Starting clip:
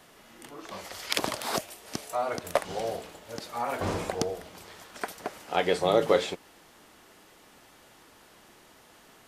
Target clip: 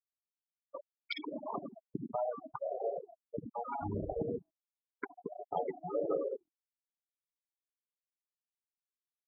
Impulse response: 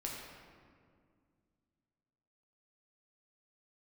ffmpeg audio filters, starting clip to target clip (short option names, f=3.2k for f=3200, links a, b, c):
-filter_complex "[0:a]areverse,acompressor=mode=upward:threshold=-32dB:ratio=2.5,areverse,adynamicequalizer=threshold=0.0126:dfrequency=520:dqfactor=1.2:tfrequency=520:tqfactor=1.2:attack=5:release=100:ratio=0.375:range=1.5:mode=cutabove:tftype=bell,agate=range=-25dB:threshold=-37dB:ratio=16:detection=peak,asplit=2[a][b];[b]adelay=96,lowpass=f=1.4k:p=1,volume=-16.5dB,asplit=2[c][d];[d]adelay=96,lowpass=f=1.4k:p=1,volume=0.31,asplit=2[e][f];[f]adelay=96,lowpass=f=1.4k:p=1,volume=0.31[g];[a][c][e][g]amix=inputs=4:normalize=0[h];[1:a]atrim=start_sample=2205,afade=t=out:st=0.25:d=0.01,atrim=end_sample=11466[i];[h][i]afir=irnorm=-1:irlink=0,aeval=exprs='sgn(val(0))*max(abs(val(0))-0.00596,0)':c=same,equalizer=f=8.8k:t=o:w=0.59:g=-11.5,bandreject=f=84.05:t=h:w=4,bandreject=f=168.1:t=h:w=4,bandreject=f=252.15:t=h:w=4,bandreject=f=336.2:t=h:w=4,bandreject=f=420.25:t=h:w=4,bandreject=f=504.3:t=h:w=4,bandreject=f=588.35:t=h:w=4,bandreject=f=672.4:t=h:w=4,bandreject=f=756.45:t=h:w=4,bandreject=f=840.5:t=h:w=4,bandreject=f=924.55:t=h:w=4,bandreject=f=1.0086k:t=h:w=4,bandreject=f=1.09265k:t=h:w=4,bandreject=f=1.1767k:t=h:w=4,bandreject=f=1.26075k:t=h:w=4,bandreject=f=1.3448k:t=h:w=4,acompressor=threshold=-44dB:ratio=4,aeval=exprs='val(0)+0.000794*(sin(2*PI*60*n/s)+sin(2*PI*2*60*n/s)/2+sin(2*PI*3*60*n/s)/3+sin(2*PI*4*60*n/s)/4+sin(2*PI*5*60*n/s)/5)':c=same,afftfilt=real='re*gte(hypot(re,im),0.0178)':imag='im*gte(hypot(re,im),0.0178)':win_size=1024:overlap=0.75,afftfilt=real='re*(1-between(b*sr/1024,440*pow(2100/440,0.5+0.5*sin(2*PI*1.5*pts/sr))/1.41,440*pow(2100/440,0.5+0.5*sin(2*PI*1.5*pts/sr))*1.41))':imag='im*(1-between(b*sr/1024,440*pow(2100/440,0.5+0.5*sin(2*PI*1.5*pts/sr))/1.41,440*pow(2100/440,0.5+0.5*sin(2*PI*1.5*pts/sr))*1.41))':win_size=1024:overlap=0.75,volume=11dB"